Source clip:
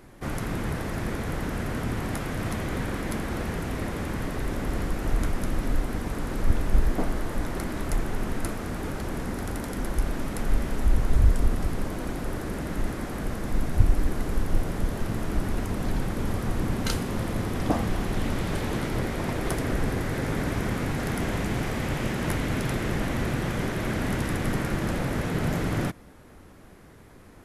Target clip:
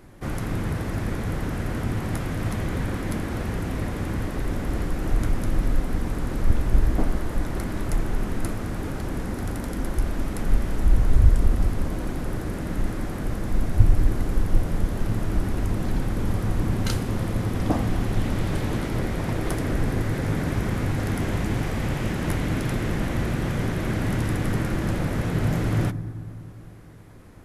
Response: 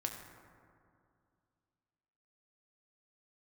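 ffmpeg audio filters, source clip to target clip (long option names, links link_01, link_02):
-filter_complex "[0:a]asplit=2[link_01][link_02];[1:a]atrim=start_sample=2205,lowshelf=frequency=420:gain=12[link_03];[link_02][link_03]afir=irnorm=-1:irlink=0,volume=-11.5dB[link_04];[link_01][link_04]amix=inputs=2:normalize=0,volume=-2.5dB"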